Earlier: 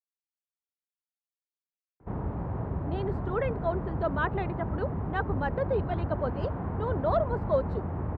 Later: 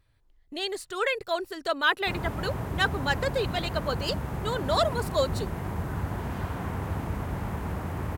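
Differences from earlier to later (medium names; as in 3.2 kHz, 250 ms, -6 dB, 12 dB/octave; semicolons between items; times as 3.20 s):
speech: entry -2.35 s; master: remove low-pass 1 kHz 12 dB/octave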